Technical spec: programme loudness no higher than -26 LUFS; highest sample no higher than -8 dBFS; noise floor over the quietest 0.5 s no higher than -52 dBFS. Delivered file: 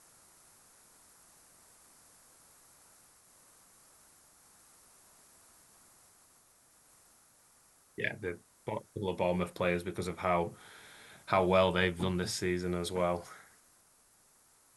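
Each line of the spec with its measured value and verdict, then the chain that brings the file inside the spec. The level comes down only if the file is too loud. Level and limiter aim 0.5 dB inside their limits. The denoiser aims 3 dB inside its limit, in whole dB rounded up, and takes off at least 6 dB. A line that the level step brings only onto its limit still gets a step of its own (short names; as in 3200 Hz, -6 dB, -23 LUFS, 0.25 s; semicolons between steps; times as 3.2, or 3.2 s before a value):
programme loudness -33.0 LUFS: OK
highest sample -12.0 dBFS: OK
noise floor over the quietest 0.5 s -66 dBFS: OK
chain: none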